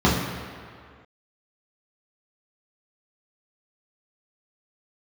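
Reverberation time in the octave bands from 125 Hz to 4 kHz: 1.7 s, 1.8 s, 2.0 s, 2.2 s, 2.1 s, 1.6 s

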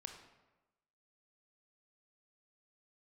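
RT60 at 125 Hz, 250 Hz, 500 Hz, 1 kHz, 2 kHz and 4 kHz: 1.0 s, 1.1 s, 1.1 s, 1.1 s, 0.95 s, 0.70 s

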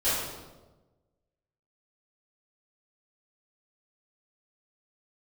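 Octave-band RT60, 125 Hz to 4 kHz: 1.5 s, 1.3 s, 1.3 s, 1.1 s, 0.80 s, 0.80 s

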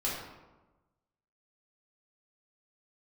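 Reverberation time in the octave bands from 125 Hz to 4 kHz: 1.4 s, 1.3 s, 1.2 s, 1.1 s, 0.85 s, 0.65 s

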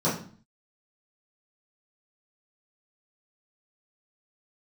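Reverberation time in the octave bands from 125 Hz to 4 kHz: 0.60 s, 0.60 s, 0.45 s, 0.45 s, 0.40 s, 0.40 s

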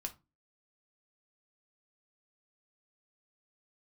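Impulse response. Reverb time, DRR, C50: 0.25 s, 4.5 dB, 16.5 dB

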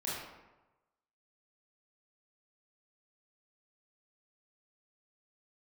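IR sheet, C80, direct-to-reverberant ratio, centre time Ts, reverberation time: 2.5 dB, -8.0 dB, 80 ms, 1.1 s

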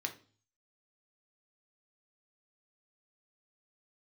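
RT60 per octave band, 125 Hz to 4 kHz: 0.75 s, 0.50 s, 0.45 s, 0.40 s, 0.35 s, 0.45 s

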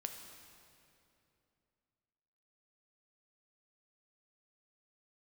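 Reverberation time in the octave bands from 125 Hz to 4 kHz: 3.2 s, 3.2 s, 3.0 s, 2.6 s, 2.4 s, 2.2 s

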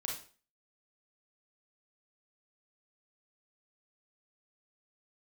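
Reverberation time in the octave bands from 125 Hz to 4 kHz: 0.40 s, 0.40 s, 0.40 s, 0.40 s, 0.40 s, 0.35 s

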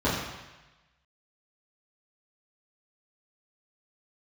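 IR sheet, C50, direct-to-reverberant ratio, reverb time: 2.0 dB, -11.0 dB, 1.1 s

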